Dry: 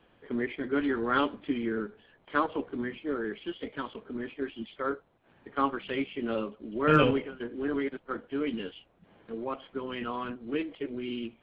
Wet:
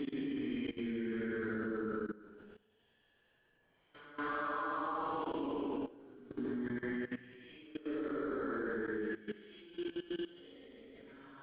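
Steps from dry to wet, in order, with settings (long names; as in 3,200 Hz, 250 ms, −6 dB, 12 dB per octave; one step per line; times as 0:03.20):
extreme stretch with random phases 4.9×, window 0.25 s, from 0:01.44
dynamic equaliser 1,100 Hz, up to +4 dB, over −42 dBFS, Q 2.1
output level in coarse steps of 18 dB
level −1.5 dB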